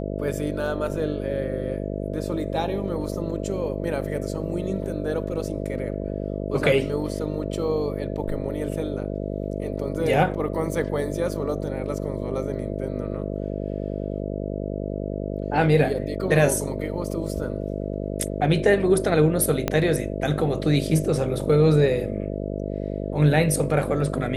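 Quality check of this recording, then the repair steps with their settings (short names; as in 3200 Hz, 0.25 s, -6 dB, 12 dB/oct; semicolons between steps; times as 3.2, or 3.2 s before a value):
buzz 50 Hz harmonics 13 -29 dBFS
19.68 pop -8 dBFS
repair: de-click; de-hum 50 Hz, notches 13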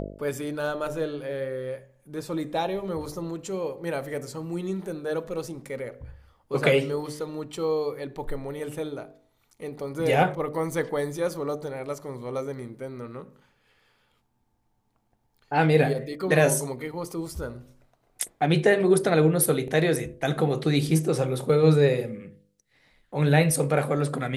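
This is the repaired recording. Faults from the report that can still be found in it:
19.68 pop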